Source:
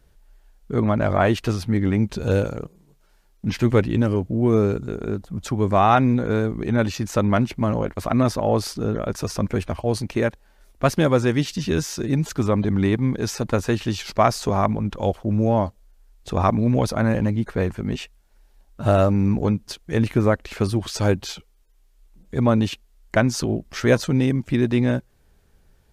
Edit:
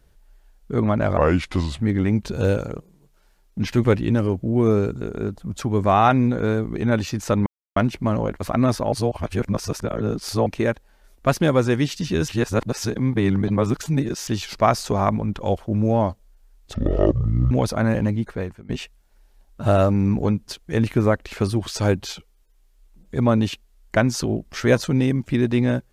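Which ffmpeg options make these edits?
-filter_complex "[0:a]asplit=11[a][b][c][d][e][f][g][h][i][j][k];[a]atrim=end=1.174[l];[b]atrim=start=1.17:end=1.67,asetpts=PTS-STARTPTS,asetrate=34839,aresample=44100,atrim=end_sample=27911,asetpts=PTS-STARTPTS[m];[c]atrim=start=1.666:end=7.33,asetpts=PTS-STARTPTS,afade=t=out:st=5.66:d=0.004:c=hsin,apad=pad_dur=0.3[n];[d]atrim=start=7.33:end=8.492,asetpts=PTS-STARTPTS,afade=t=in:d=0.004:c=hsin[o];[e]atrim=start=8.488:end=10.032,asetpts=PTS-STARTPTS,areverse[p];[f]atrim=start=10.028:end=11.852[q];[g]atrim=start=11.848:end=13.842,asetpts=PTS-STARTPTS,areverse[r];[h]atrim=start=13.838:end=16.314[s];[i]atrim=start=16.31:end=16.71,asetpts=PTS-STARTPTS,asetrate=22932,aresample=44100,atrim=end_sample=33923,asetpts=PTS-STARTPTS[t];[j]atrim=start=16.706:end=17.89,asetpts=PTS-STARTPTS,afade=t=out:st=0.624:d=0.56:silence=0.0749894[u];[k]atrim=start=17.89,asetpts=PTS-STARTPTS,afade=t=in:d=0.004:c=hsin:silence=0.0749894[v];[l][m]acrossfade=d=0.004:c1=hsin:c2=hsin[w];[n][o]concat=n=2:v=0:a=1[x];[w][x]acrossfade=d=0.004:c1=hsin:c2=hsin[y];[y][p]acrossfade=d=0.004:c1=hsin:c2=hsin[z];[z][q]acrossfade=d=0.004:c1=hsin:c2=hsin[aa];[aa][r]acrossfade=d=0.004:c1=hsin:c2=hsin[ab];[ab][s]acrossfade=d=0.004:c1=hsin:c2=hsin[ac];[ac][t]acrossfade=d=0.004:c1=hsin:c2=hsin[ad];[u][v]concat=n=2:v=0:a=1[ae];[ad][ae]acrossfade=d=0.004:c1=hsin:c2=hsin"

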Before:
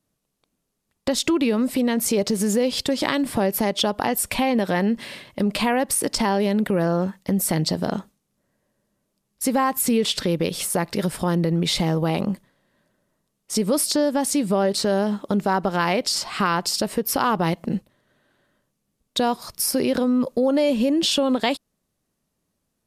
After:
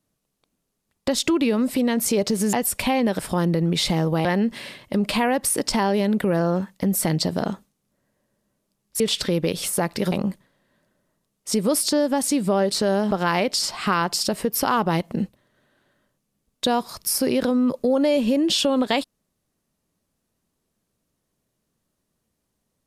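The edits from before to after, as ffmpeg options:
-filter_complex "[0:a]asplit=7[a][b][c][d][e][f][g];[a]atrim=end=2.532[h];[b]atrim=start=4.048:end=4.712[i];[c]atrim=start=11.088:end=12.152[j];[d]atrim=start=4.708:end=9.462[k];[e]atrim=start=9.968:end=11.092[l];[f]atrim=start=12.148:end=15.142[m];[g]atrim=start=15.638[n];[h][i]acrossfade=d=0.004:c1=hsin:c2=hsin[o];[o][j]acrossfade=d=0.004:c1=hsin:c2=hsin[p];[p][k]acrossfade=d=0.004:c1=hsin:c2=hsin[q];[q][l]acrossfade=d=0.004:c1=hsin:c2=hsin[r];[r][m]acrossfade=d=0.004:c1=hsin:c2=hsin[s];[s][n]acrossfade=d=0.004:c1=hsin:c2=hsin"

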